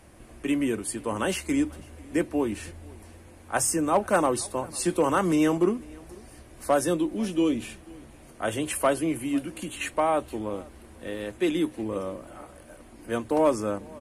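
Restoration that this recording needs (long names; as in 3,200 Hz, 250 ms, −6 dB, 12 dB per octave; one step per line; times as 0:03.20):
clipped peaks rebuilt −13.5 dBFS
echo removal 494 ms −24 dB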